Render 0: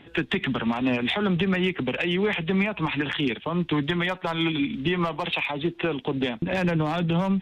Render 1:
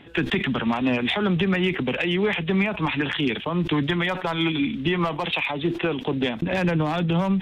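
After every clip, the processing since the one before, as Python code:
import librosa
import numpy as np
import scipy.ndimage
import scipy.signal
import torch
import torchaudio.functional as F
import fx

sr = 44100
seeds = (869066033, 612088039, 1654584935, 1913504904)

y = fx.sustainer(x, sr, db_per_s=100.0)
y = F.gain(torch.from_numpy(y), 1.5).numpy()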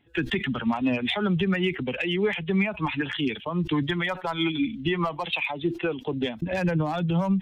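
y = fx.bin_expand(x, sr, power=1.5)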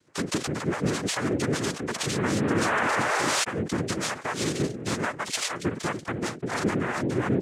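y = fx.spec_paint(x, sr, seeds[0], shape='rise', start_s=2.17, length_s=1.27, low_hz=200.0, high_hz=2200.0, level_db=-23.0)
y = 10.0 ** (-20.5 / 20.0) * np.tanh(y / 10.0 ** (-20.5 / 20.0))
y = fx.noise_vocoder(y, sr, seeds[1], bands=3)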